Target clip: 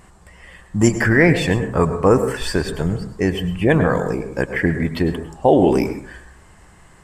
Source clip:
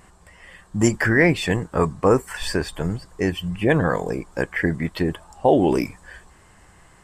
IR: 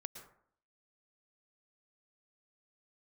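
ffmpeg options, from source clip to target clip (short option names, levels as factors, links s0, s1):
-filter_complex "[0:a]asplit=2[s0][s1];[s1]lowshelf=f=390:g=4[s2];[1:a]atrim=start_sample=2205,asetrate=48510,aresample=44100[s3];[s2][s3]afir=irnorm=-1:irlink=0,volume=2.99[s4];[s0][s4]amix=inputs=2:normalize=0,volume=0.473"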